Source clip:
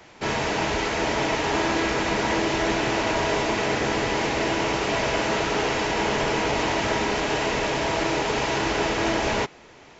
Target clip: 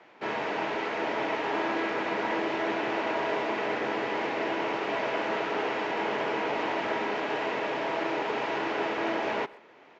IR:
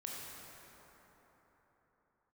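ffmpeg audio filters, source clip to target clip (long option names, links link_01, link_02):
-filter_complex "[0:a]highpass=270,lowpass=2600,asplit=2[link_01][link_02];[link_02]adelay=130,highpass=300,lowpass=3400,asoftclip=type=hard:threshold=-21dB,volume=-20dB[link_03];[link_01][link_03]amix=inputs=2:normalize=0,volume=-4.5dB"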